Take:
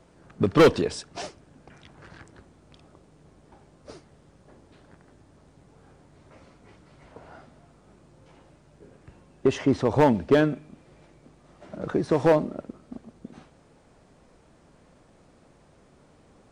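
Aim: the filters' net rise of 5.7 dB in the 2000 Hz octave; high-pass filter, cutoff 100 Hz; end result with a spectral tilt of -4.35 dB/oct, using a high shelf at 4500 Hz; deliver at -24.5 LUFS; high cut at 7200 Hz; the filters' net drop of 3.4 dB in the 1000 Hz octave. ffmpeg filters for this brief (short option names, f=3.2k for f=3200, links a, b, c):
-af "highpass=100,lowpass=7.2k,equalizer=f=1k:t=o:g=-7,equalizer=f=2k:t=o:g=8,highshelf=f=4.5k:g=9,volume=-1dB"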